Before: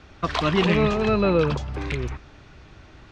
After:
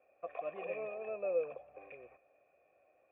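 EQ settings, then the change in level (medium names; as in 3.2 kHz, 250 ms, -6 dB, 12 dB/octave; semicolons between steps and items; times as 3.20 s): cascade formant filter e; vowel filter a; +6.0 dB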